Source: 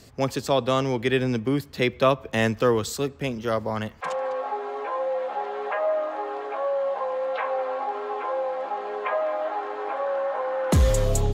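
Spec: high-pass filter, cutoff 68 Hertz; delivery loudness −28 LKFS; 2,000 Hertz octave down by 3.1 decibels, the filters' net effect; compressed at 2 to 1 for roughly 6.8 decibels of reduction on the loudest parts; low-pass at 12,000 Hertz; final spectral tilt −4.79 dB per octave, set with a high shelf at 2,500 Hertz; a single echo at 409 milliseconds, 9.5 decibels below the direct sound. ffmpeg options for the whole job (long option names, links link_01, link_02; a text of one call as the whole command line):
ffmpeg -i in.wav -af "highpass=68,lowpass=12000,equalizer=frequency=2000:width_type=o:gain=-6.5,highshelf=frequency=2500:gain=5.5,acompressor=threshold=-28dB:ratio=2,aecho=1:1:409:0.335,volume=1.5dB" out.wav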